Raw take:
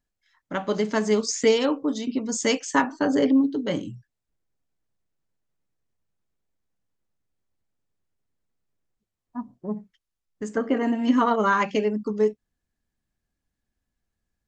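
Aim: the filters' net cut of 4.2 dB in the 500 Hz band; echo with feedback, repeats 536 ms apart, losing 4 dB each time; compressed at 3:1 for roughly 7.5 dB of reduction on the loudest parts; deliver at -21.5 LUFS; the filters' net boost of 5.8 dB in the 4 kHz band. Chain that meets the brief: peaking EQ 500 Hz -5 dB; peaking EQ 4 kHz +8.5 dB; compression 3:1, threshold -26 dBFS; feedback delay 536 ms, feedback 63%, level -4 dB; trim +8 dB

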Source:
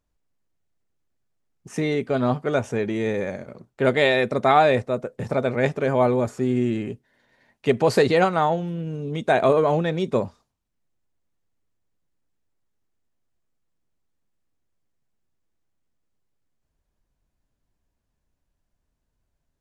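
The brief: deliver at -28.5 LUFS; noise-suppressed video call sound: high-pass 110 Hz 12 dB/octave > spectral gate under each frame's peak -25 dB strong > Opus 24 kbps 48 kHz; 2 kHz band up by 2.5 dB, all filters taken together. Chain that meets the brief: high-pass 110 Hz 12 dB/octave; peaking EQ 2 kHz +3 dB; spectral gate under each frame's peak -25 dB strong; trim -6.5 dB; Opus 24 kbps 48 kHz

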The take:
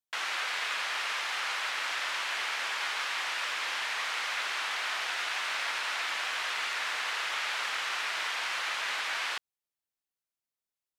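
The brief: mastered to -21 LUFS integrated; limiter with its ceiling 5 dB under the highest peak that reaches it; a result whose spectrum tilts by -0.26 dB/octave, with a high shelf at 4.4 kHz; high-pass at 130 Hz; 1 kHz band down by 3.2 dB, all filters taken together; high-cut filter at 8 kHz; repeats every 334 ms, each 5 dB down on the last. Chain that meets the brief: high-pass 130 Hz; low-pass 8 kHz; peaking EQ 1 kHz -3.5 dB; treble shelf 4.4 kHz -8 dB; peak limiter -27.5 dBFS; feedback delay 334 ms, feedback 56%, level -5 dB; trim +13 dB

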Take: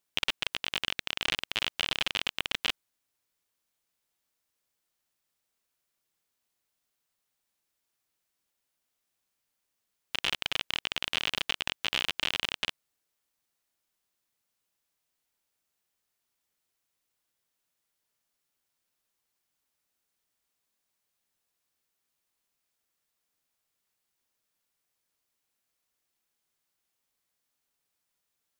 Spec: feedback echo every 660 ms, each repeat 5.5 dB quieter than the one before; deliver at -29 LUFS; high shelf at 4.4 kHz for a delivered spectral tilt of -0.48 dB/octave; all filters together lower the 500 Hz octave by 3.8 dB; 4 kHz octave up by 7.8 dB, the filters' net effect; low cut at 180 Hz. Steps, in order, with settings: high-pass 180 Hz; peaking EQ 500 Hz -5 dB; peaking EQ 4 kHz +8.5 dB; treble shelf 4.4 kHz +5 dB; feedback delay 660 ms, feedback 53%, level -5.5 dB; trim -4.5 dB

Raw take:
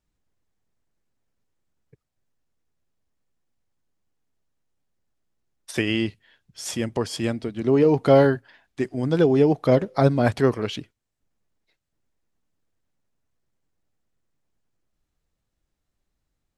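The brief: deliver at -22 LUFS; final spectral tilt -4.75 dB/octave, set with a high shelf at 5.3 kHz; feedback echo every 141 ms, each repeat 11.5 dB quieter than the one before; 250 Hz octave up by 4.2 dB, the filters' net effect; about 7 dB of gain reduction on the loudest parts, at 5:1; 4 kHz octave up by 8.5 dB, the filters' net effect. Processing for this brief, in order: peaking EQ 250 Hz +5 dB; peaking EQ 4 kHz +8 dB; treble shelf 5.3 kHz +9 dB; compression 5:1, threshold -17 dBFS; feedback delay 141 ms, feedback 27%, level -11.5 dB; trim +1.5 dB

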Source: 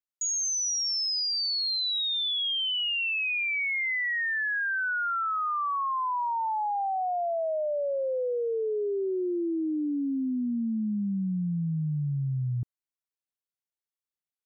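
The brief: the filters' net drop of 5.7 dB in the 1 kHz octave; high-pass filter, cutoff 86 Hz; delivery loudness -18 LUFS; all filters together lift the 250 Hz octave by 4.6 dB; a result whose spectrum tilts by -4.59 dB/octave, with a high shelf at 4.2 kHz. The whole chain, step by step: high-pass 86 Hz; peaking EQ 250 Hz +6.5 dB; peaking EQ 1 kHz -7.5 dB; treble shelf 4.2 kHz -7.5 dB; trim +10.5 dB

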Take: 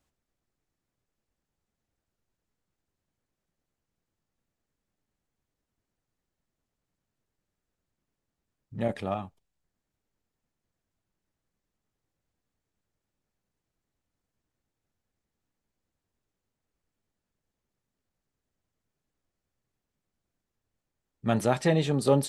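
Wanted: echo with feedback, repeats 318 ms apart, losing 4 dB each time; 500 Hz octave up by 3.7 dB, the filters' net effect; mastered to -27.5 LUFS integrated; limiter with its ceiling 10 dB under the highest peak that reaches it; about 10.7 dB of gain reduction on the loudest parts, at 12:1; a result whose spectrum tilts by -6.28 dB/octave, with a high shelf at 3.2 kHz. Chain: peaking EQ 500 Hz +4.5 dB; treble shelf 3.2 kHz -3.5 dB; compression 12:1, threshold -24 dBFS; peak limiter -24.5 dBFS; feedback delay 318 ms, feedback 63%, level -4 dB; trim +9.5 dB

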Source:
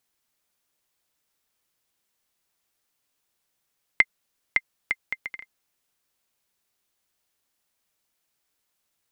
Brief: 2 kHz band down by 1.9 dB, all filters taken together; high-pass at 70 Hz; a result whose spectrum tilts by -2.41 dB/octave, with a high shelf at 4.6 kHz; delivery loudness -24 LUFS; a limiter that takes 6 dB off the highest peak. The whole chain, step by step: high-pass 70 Hz; peaking EQ 2 kHz -3 dB; treble shelf 4.6 kHz +6.5 dB; trim +9.5 dB; peak limiter 0 dBFS

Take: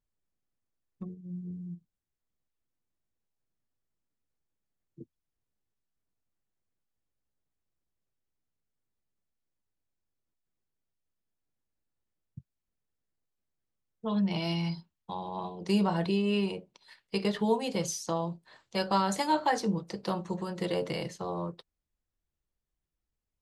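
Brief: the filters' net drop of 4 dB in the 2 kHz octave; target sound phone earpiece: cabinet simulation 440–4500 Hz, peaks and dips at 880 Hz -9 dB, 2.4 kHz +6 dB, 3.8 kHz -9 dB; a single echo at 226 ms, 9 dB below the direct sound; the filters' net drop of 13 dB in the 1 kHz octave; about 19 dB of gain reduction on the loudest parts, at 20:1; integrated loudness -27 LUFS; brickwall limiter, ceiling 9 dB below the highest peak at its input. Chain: peaking EQ 1 kHz -8.5 dB; peaking EQ 2 kHz -5.5 dB; compression 20:1, threshold -42 dBFS; peak limiter -40 dBFS; cabinet simulation 440–4500 Hz, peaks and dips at 880 Hz -9 dB, 2.4 kHz +6 dB, 3.8 kHz -9 dB; delay 226 ms -9 dB; trim +29.5 dB

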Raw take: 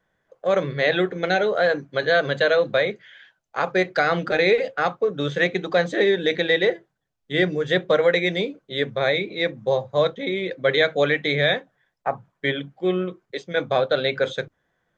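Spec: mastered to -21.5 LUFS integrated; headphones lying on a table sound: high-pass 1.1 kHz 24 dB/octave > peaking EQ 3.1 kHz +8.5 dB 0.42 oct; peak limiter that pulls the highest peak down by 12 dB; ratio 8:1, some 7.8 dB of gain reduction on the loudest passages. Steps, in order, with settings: compression 8:1, threshold -22 dBFS; peak limiter -22 dBFS; high-pass 1.1 kHz 24 dB/octave; peaking EQ 3.1 kHz +8.5 dB 0.42 oct; trim +13.5 dB

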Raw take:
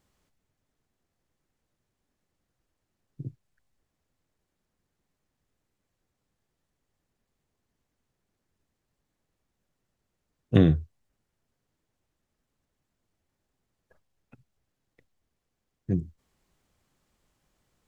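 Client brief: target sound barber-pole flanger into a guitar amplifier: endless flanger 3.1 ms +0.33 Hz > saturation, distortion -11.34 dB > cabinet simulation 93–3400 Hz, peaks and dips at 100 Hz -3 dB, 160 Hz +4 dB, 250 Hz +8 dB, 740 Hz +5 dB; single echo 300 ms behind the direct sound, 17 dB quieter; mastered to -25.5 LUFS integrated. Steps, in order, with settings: delay 300 ms -17 dB; endless flanger 3.1 ms +0.33 Hz; saturation -19.5 dBFS; cabinet simulation 93–3400 Hz, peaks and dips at 100 Hz -3 dB, 160 Hz +4 dB, 250 Hz +8 dB, 740 Hz +5 dB; trim +5.5 dB

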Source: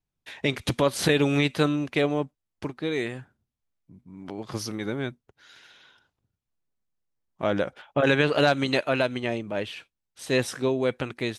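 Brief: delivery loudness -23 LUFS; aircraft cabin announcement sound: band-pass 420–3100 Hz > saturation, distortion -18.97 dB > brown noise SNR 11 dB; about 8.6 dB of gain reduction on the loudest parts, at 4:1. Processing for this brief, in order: compression 4:1, threshold -27 dBFS; band-pass 420–3100 Hz; saturation -23.5 dBFS; brown noise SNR 11 dB; trim +14 dB

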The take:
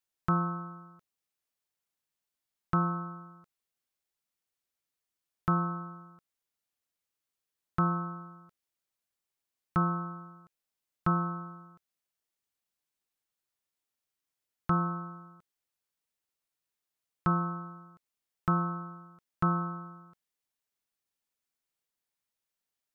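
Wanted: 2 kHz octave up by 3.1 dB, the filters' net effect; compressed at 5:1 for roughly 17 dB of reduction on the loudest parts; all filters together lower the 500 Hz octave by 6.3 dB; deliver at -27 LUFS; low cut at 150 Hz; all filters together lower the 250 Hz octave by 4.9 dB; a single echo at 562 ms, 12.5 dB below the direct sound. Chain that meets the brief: high-pass 150 Hz; peaking EQ 250 Hz -4.5 dB; peaking EQ 500 Hz -8.5 dB; peaking EQ 2 kHz +6 dB; compression 5:1, threshold -44 dBFS; delay 562 ms -12.5 dB; trim +22 dB

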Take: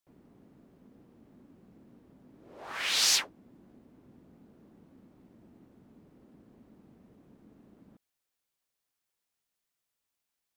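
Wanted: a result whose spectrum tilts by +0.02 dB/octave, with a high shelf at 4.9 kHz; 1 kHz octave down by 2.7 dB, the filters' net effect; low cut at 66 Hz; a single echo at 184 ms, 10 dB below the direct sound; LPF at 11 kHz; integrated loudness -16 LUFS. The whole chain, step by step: high-pass 66 Hz; low-pass 11 kHz; peaking EQ 1 kHz -4 dB; treble shelf 4.9 kHz +8.5 dB; delay 184 ms -10 dB; trim +7 dB

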